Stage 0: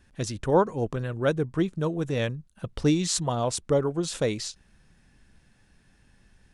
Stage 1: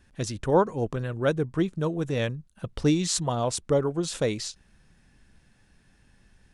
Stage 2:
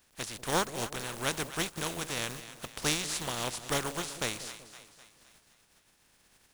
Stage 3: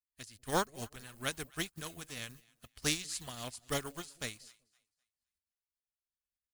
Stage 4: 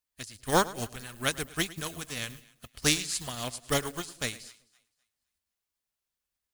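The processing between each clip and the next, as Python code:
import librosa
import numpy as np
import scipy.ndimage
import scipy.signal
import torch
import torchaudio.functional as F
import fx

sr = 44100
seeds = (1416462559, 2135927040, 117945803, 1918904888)

y1 = x
y2 = fx.spec_flatten(y1, sr, power=0.31)
y2 = fx.echo_split(y2, sr, split_hz=710.0, low_ms=190, high_ms=257, feedback_pct=52, wet_db=-13.0)
y2 = y2 * librosa.db_to_amplitude(-8.0)
y3 = fx.bin_expand(y2, sr, power=2.0)
y4 = fx.echo_feedback(y3, sr, ms=106, feedback_pct=26, wet_db=-18.0)
y4 = y4 * librosa.db_to_amplitude(7.5)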